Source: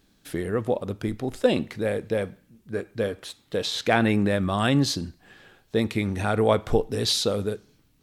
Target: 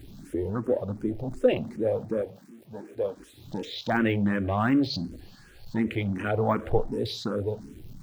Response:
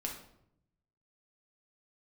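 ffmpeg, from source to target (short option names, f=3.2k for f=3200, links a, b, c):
-filter_complex "[0:a]aeval=exprs='val(0)+0.5*0.0237*sgn(val(0))':c=same,asettb=1/sr,asplit=3[a][b][c];[a]atrim=end=2.214[d];[b]atrim=start=2.21:end=3.2,asetpts=PTS-STARTPTS,afade=t=in:d=0.004:c=qsin,afade=t=out:st=0.986:d=0.004:c=qsin,highpass=f=380:p=1[e];[c]atrim=start=3.196[f];[d][e]acrossfade=d=0.004:c1=hsin:c2=qsin[g];[g][f]acrossfade=d=0.004:c1=qsin:c2=hsin,afwtdn=0.0282,deesser=0.85,asettb=1/sr,asplit=3[h][i][j];[h]atrim=end=4.904[k];[i]atrim=start=4.9:end=5.76,asetpts=PTS-STARTPTS,afade=t=in:d=0.004:c=qsin,afade=t=out:st=0.856:d=0.004:c=qsin,equalizer=f=4.4k:w=6.5:g=12[l];[j]atrim=start=5.756[m];[k][l]acrossfade=d=0.004:c1=hsin:c2=qsin[n];[n][m]acrossfade=d=0.004:c1=qsin:c2=hsin,asplit=2[o][p];[1:a]atrim=start_sample=2205,afade=t=out:st=0.39:d=0.01,atrim=end_sample=17640,asetrate=74970,aresample=44100[q];[p][q]afir=irnorm=-1:irlink=0,volume=-9dB[r];[o][r]amix=inputs=2:normalize=0,asplit=2[s][t];[t]afreqshift=2.7[u];[s][u]amix=inputs=2:normalize=1,volume=-1.5dB"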